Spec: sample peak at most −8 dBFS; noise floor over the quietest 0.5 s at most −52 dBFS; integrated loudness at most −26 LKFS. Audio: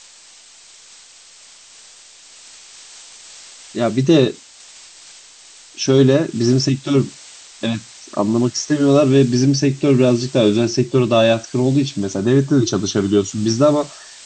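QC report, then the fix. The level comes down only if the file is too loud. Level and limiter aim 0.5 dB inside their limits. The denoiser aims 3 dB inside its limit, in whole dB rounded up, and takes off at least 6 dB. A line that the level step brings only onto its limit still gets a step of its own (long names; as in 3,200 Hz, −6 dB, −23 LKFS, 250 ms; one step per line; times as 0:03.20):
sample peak −2.5 dBFS: out of spec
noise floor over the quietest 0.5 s −45 dBFS: out of spec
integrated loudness −16.5 LKFS: out of spec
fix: level −10 dB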